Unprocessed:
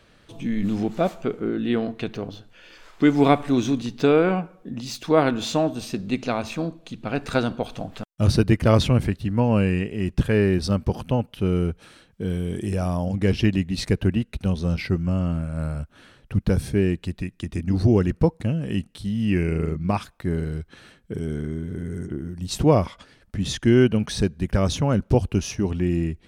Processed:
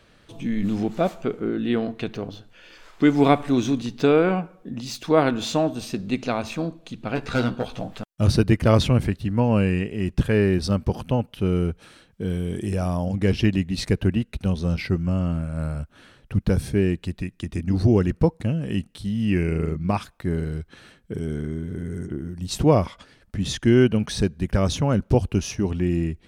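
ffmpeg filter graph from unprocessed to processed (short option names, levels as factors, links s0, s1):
-filter_complex "[0:a]asettb=1/sr,asplit=3[s0][s1][s2];[s0]atrim=end=7.154[s3];[s1]atrim=start=7.15:end=7.94,asetpts=PTS-STARTPTS,afade=t=in:d=0.004:c=qsin,afade=t=out:st=0.786:d=0.004:c=qsin,acrossover=split=6200[s4][s5];[s5]acompressor=threshold=0.00141:ratio=4:attack=1:release=60[s6];[s4][s6]amix=inputs=2:normalize=0,volume=7.08,asoftclip=hard,volume=0.141,asplit=2[s7][s8];[s8]adelay=16,volume=0.531[s9];[s7][s9]amix=inputs=2:normalize=0,atrim=end_sample=34839[s10];[s2]atrim=start=7.936[s11];[s3][s10]acrossfade=d=0.004:c1=hsin:c2=qsin[s12];[s12][s11]acrossfade=d=0.004:c1=qsin:c2=hsin"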